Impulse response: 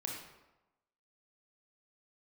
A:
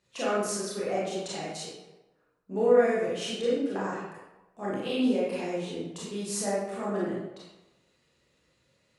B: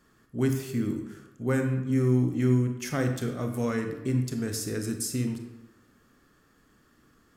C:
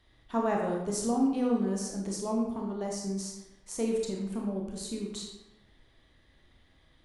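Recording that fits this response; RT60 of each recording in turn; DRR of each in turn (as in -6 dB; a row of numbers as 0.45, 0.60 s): C; 1.0, 1.0, 1.0 s; -8.5, 4.5, -1.0 dB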